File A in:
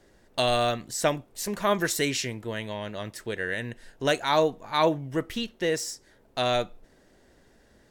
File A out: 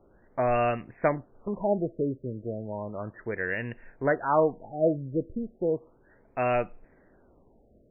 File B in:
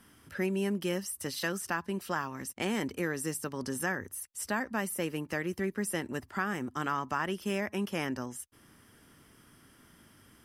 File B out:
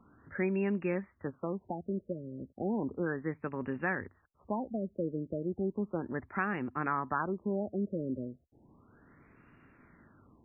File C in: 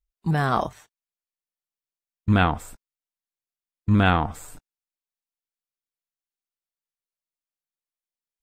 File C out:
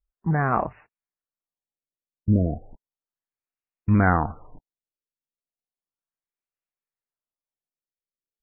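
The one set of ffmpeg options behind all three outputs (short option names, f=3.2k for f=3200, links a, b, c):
-af "afftfilt=real='re*lt(b*sr/1024,610*pow(2900/610,0.5+0.5*sin(2*PI*0.34*pts/sr)))':imag='im*lt(b*sr/1024,610*pow(2900/610,0.5+0.5*sin(2*PI*0.34*pts/sr)))':win_size=1024:overlap=0.75"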